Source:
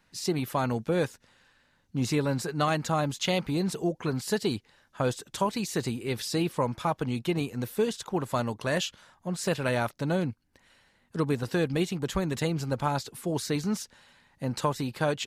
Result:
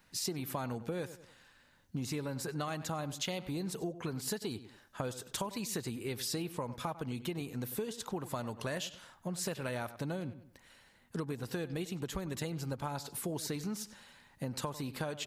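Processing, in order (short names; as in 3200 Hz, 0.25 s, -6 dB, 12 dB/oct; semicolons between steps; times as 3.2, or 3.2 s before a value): darkening echo 96 ms, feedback 24%, low-pass 4000 Hz, level -16.5 dB; compressor 6:1, threshold -35 dBFS, peak gain reduction 13.5 dB; high shelf 12000 Hz +11.5 dB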